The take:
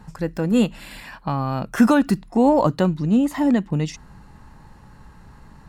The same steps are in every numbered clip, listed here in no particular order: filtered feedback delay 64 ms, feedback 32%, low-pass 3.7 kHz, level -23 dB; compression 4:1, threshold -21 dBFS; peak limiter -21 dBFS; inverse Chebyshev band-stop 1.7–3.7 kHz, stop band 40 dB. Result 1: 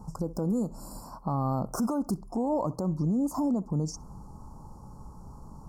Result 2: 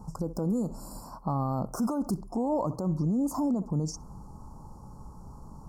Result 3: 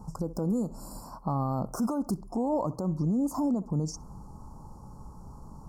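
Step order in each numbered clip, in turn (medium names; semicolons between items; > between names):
inverse Chebyshev band-stop > compression > filtered feedback delay > peak limiter; filtered feedback delay > peak limiter > inverse Chebyshev band-stop > compression; filtered feedback delay > compression > peak limiter > inverse Chebyshev band-stop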